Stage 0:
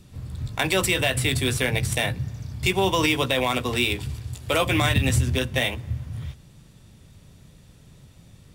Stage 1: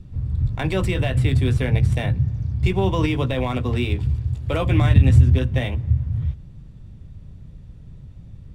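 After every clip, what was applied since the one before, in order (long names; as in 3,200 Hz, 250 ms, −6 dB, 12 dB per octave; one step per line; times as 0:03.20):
RIAA equalisation playback
level −3.5 dB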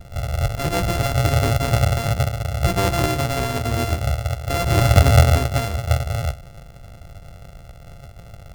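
samples sorted by size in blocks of 64 samples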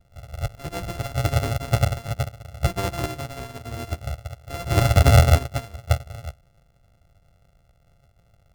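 boost into a limiter +6 dB
expander for the loud parts 2.5 to 1, over −20 dBFS
level −2.5 dB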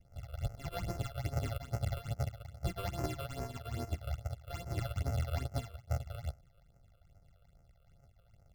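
reversed playback
downward compressor 10 to 1, threshold −27 dBFS, peak gain reduction 18.5 dB
reversed playback
all-pass phaser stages 8, 2.4 Hz, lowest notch 240–3,600 Hz
level −5 dB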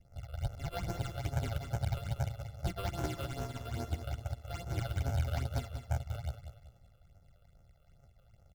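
on a send: repeating echo 191 ms, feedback 38%, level −9.5 dB
on the sum: highs frequency-modulated by the lows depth 0.32 ms
level +1 dB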